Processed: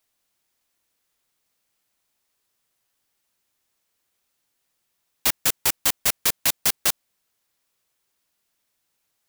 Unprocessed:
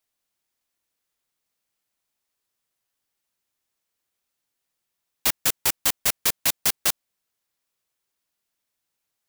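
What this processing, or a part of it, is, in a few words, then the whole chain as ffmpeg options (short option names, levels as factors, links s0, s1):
clipper into limiter: -af "asoftclip=type=hard:threshold=0.282,alimiter=limit=0.158:level=0:latency=1:release=32,volume=2"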